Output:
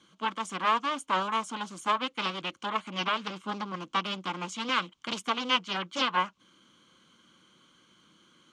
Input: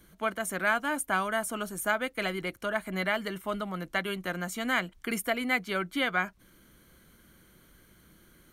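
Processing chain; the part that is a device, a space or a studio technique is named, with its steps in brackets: 3.27–4.46 s: peaking EQ 210 Hz +3.5 dB 0.56 oct; full-range speaker at full volume (loudspeaker Doppler distortion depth 0.89 ms; cabinet simulation 220–7100 Hz, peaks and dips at 410 Hz -7 dB, 670 Hz -8 dB, 1.1 kHz +7 dB, 1.8 kHz -9 dB, 3.1 kHz +9 dB, 6.7 kHz +4 dB)

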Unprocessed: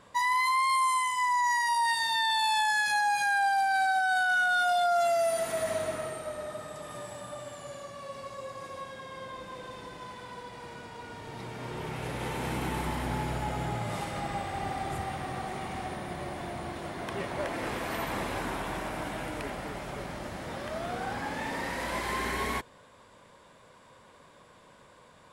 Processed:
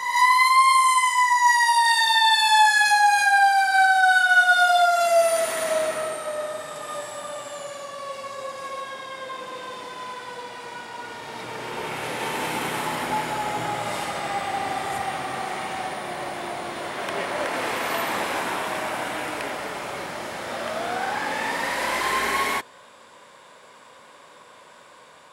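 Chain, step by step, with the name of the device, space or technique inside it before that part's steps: ghost voice (reverse; reverberation RT60 1.3 s, pre-delay 21 ms, DRR 2.5 dB; reverse; high-pass 580 Hz 6 dB/octave); trim +8 dB

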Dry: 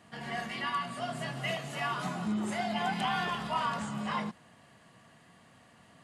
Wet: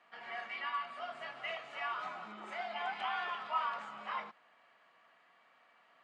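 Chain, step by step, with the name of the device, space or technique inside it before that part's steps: tin-can telephone (band-pass 650–3000 Hz; small resonant body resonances 1.3/2.3 kHz, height 10 dB); 2.61–3.31 s: steep high-pass 180 Hz; trim -4.5 dB

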